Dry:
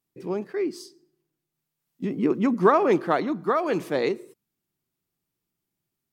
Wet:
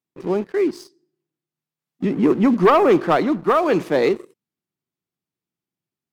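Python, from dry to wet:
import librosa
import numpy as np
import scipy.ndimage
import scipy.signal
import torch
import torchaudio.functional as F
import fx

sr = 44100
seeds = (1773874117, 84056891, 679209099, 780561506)

y = scipy.signal.sosfilt(scipy.signal.butter(2, 100.0, 'highpass', fs=sr, output='sos'), x)
y = fx.high_shelf(y, sr, hz=7500.0, db=-10.0)
y = fx.leveller(y, sr, passes=2)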